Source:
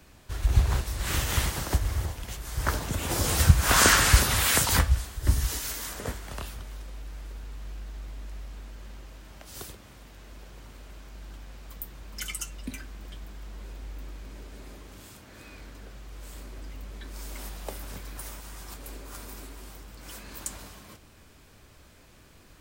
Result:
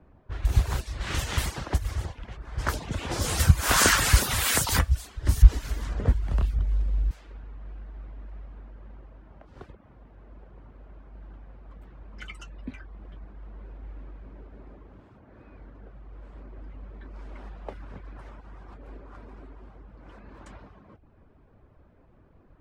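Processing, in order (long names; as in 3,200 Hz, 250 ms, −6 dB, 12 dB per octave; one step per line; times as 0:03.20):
0:05.42–0:07.11: RIAA equalisation playback
reverb reduction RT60 0.52 s
low-pass that shuts in the quiet parts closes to 890 Hz, open at −22 dBFS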